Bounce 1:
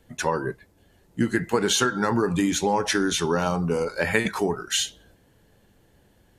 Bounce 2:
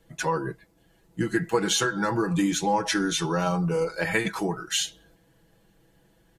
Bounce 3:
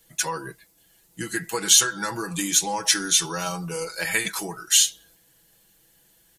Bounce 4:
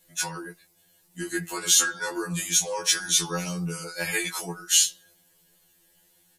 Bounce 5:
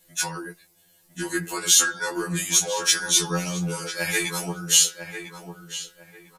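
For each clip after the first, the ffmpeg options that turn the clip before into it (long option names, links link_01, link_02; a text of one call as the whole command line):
ffmpeg -i in.wav -af "aecho=1:1:6.1:0.77,volume=-4dB" out.wav
ffmpeg -i in.wav -af "crystalizer=i=9.5:c=0,volume=-7.5dB" out.wav
ffmpeg -i in.wav -af "afftfilt=real='re*2*eq(mod(b,4),0)':imag='im*2*eq(mod(b,4),0)':win_size=2048:overlap=0.75" out.wav
ffmpeg -i in.wav -filter_complex "[0:a]asplit=2[link_01][link_02];[link_02]adelay=999,lowpass=frequency=2100:poles=1,volume=-8dB,asplit=2[link_03][link_04];[link_04]adelay=999,lowpass=frequency=2100:poles=1,volume=0.28,asplit=2[link_05][link_06];[link_06]adelay=999,lowpass=frequency=2100:poles=1,volume=0.28[link_07];[link_01][link_03][link_05][link_07]amix=inputs=4:normalize=0,volume=2.5dB" out.wav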